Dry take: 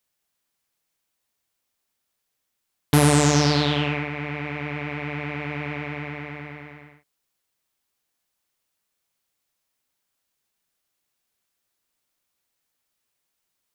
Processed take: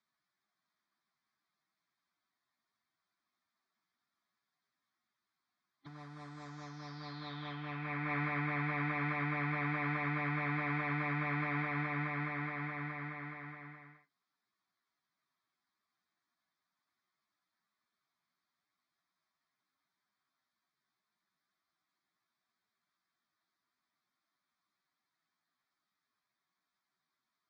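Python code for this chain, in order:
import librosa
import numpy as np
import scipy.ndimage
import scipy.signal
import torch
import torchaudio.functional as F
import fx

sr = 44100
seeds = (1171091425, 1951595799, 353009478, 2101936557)

y = fx.over_compress(x, sr, threshold_db=-30.0, ratio=-1.0)
y = fx.cabinet(y, sr, low_hz=210.0, low_slope=12, high_hz=4000.0, hz=(860.0, 1500.0, 3100.0), db=(-7, -5, 4))
y = fx.stretch_vocoder_free(y, sr, factor=2.0)
y = fx.fixed_phaser(y, sr, hz=1200.0, stages=4)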